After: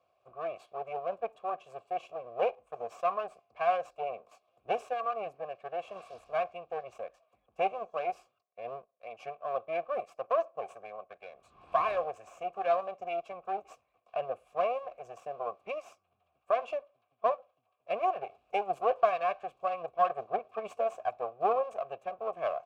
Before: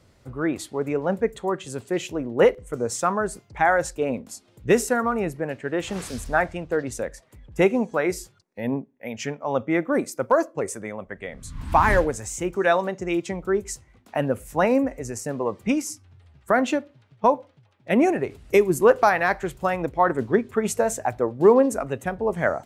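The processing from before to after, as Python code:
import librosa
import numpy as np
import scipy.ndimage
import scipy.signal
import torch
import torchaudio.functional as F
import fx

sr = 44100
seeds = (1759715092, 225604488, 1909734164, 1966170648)

y = fx.lower_of_two(x, sr, delay_ms=1.8)
y = fx.vowel_filter(y, sr, vowel='a')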